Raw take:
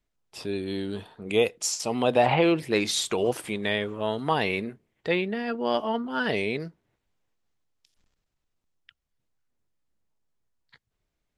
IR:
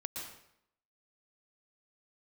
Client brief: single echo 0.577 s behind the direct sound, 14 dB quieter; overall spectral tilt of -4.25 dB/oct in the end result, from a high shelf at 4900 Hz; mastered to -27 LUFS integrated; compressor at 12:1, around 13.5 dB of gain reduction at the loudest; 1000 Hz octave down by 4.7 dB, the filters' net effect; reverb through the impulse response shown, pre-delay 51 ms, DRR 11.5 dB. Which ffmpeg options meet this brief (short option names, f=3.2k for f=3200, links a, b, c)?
-filter_complex "[0:a]equalizer=f=1k:t=o:g=-6.5,highshelf=f=4.9k:g=-8.5,acompressor=threshold=-32dB:ratio=12,aecho=1:1:577:0.2,asplit=2[a][b];[1:a]atrim=start_sample=2205,adelay=51[c];[b][c]afir=irnorm=-1:irlink=0,volume=-11.5dB[d];[a][d]amix=inputs=2:normalize=0,volume=10dB"